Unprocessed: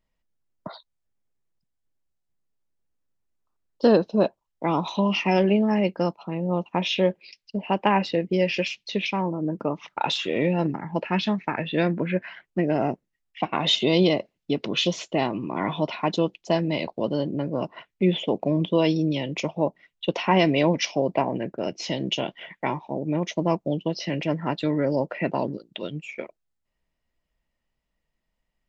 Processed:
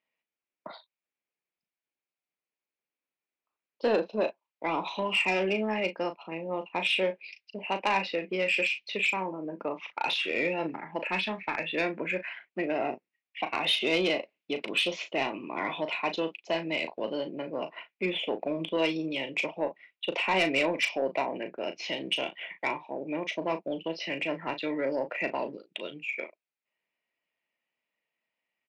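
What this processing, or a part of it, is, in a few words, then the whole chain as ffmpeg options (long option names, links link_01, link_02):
intercom: -filter_complex "[0:a]highpass=340,lowpass=4400,equalizer=frequency=2400:width_type=o:width=0.53:gain=11,asoftclip=type=tanh:threshold=-13.5dB,asplit=2[link_01][link_02];[link_02]adelay=37,volume=-9.5dB[link_03];[link_01][link_03]amix=inputs=2:normalize=0,volume=-4.5dB"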